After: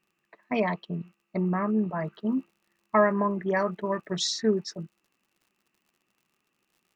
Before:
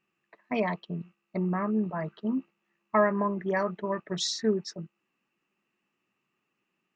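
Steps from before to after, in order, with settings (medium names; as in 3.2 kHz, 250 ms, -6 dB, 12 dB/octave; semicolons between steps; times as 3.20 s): crackle 23 per s -56 dBFS, from 2.32 s 86 per s; trim +2 dB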